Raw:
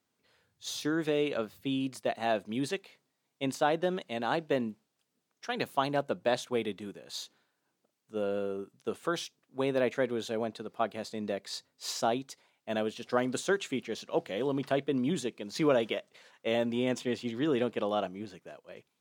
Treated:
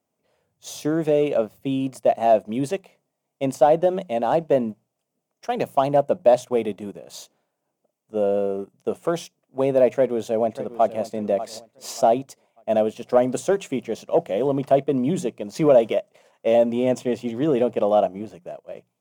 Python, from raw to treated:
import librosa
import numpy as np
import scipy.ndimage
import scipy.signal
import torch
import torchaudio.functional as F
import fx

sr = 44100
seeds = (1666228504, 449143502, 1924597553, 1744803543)

y = fx.echo_throw(x, sr, start_s=9.87, length_s=1.12, ms=590, feedback_pct=35, wet_db=-14.0)
y = fx.hum_notches(y, sr, base_hz=60, count=3)
y = fx.leveller(y, sr, passes=1)
y = fx.graphic_eq_15(y, sr, hz=(160, 630, 1600, 4000), db=(5, 10, -8, -10))
y = y * librosa.db_to_amplitude(2.5)